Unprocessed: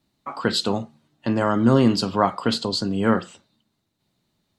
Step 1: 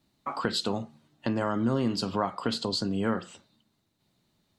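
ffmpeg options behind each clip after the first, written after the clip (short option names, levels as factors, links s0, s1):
-af "acompressor=threshold=0.0398:ratio=2.5"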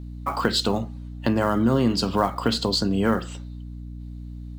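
-filter_complex "[0:a]acrossover=split=700|5100[s0][s1][s2];[s1]acrusher=bits=5:mode=log:mix=0:aa=0.000001[s3];[s0][s3][s2]amix=inputs=3:normalize=0,aeval=exprs='val(0)+0.00891*(sin(2*PI*60*n/s)+sin(2*PI*2*60*n/s)/2+sin(2*PI*3*60*n/s)/3+sin(2*PI*4*60*n/s)/4+sin(2*PI*5*60*n/s)/5)':c=same,volume=2.11"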